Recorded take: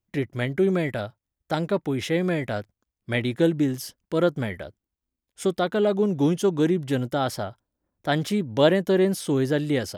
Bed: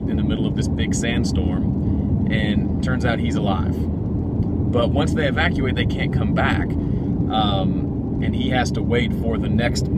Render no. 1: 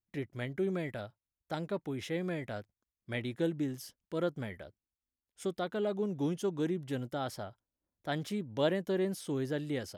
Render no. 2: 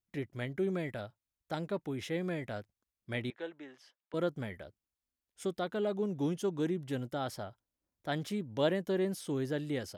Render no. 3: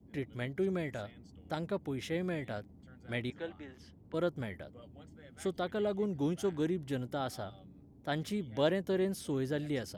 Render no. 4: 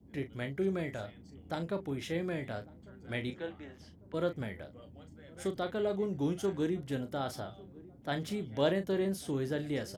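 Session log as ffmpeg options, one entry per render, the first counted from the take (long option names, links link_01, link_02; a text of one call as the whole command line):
ffmpeg -i in.wav -af "volume=-11.5dB" out.wav
ffmpeg -i in.wav -filter_complex "[0:a]asettb=1/sr,asplit=3[link_01][link_02][link_03];[link_01]atrim=end=3.304[link_04];[link_02]atrim=start=3.3:end=4.14,asetpts=PTS-STARTPTS,afade=type=in:duration=0.004:curve=qsin,afade=type=out:start_time=0.836:duration=0.004:curve=qsin,highpass=720,lowpass=2700[link_05];[link_03]atrim=start=4.136[link_06];[link_04][link_05]acrossfade=duration=0.004:curve1=hsin:curve2=qsin[link_07];[link_07][link_06]acrossfade=duration=0.004:curve1=qsin:curve2=hsin" out.wav
ffmpeg -i in.wav -i bed.wav -filter_complex "[1:a]volume=-35dB[link_01];[0:a][link_01]amix=inputs=2:normalize=0" out.wav
ffmpeg -i in.wav -filter_complex "[0:a]asplit=2[link_01][link_02];[link_02]adelay=36,volume=-9.5dB[link_03];[link_01][link_03]amix=inputs=2:normalize=0,asplit=2[link_04][link_05];[link_05]adelay=1148,lowpass=frequency=930:poles=1,volume=-21dB,asplit=2[link_06][link_07];[link_07]adelay=1148,lowpass=frequency=930:poles=1,volume=0.48,asplit=2[link_08][link_09];[link_09]adelay=1148,lowpass=frequency=930:poles=1,volume=0.48[link_10];[link_04][link_06][link_08][link_10]amix=inputs=4:normalize=0" out.wav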